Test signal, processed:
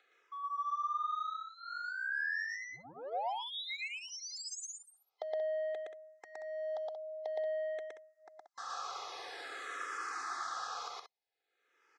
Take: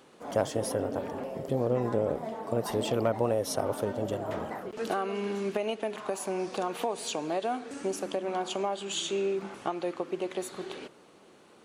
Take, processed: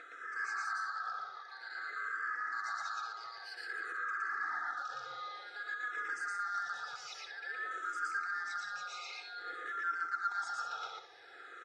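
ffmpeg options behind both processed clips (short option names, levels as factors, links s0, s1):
-filter_complex "[0:a]afftfilt=real='real(if(lt(b,960),b+48*(1-2*mod(floor(b/48),2)),b),0)':imag='imag(if(lt(b,960),b+48*(1-2*mod(floor(b/48),2)),b),0)':win_size=2048:overlap=0.75,acrossover=split=4600[s0][s1];[s0]acompressor=mode=upward:threshold=0.00316:ratio=2.5[s2];[s1]alimiter=level_in=2:limit=0.0631:level=0:latency=1:release=359,volume=0.501[s3];[s2][s3]amix=inputs=2:normalize=0,asoftclip=type=tanh:threshold=0.0355,aecho=1:1:2.4:0.83,areverse,acompressor=threshold=0.01:ratio=20,areverse,highpass=430,equalizer=f=690:t=q:w=4:g=9,equalizer=f=1400:t=q:w=4:g=5,equalizer=f=3000:t=q:w=4:g=-8,lowpass=f=6500:w=0.5412,lowpass=f=6500:w=1.3066,aecho=1:1:116.6|180.8:1|0.398,asplit=2[s4][s5];[s5]afreqshift=-0.52[s6];[s4][s6]amix=inputs=2:normalize=1,volume=1.12"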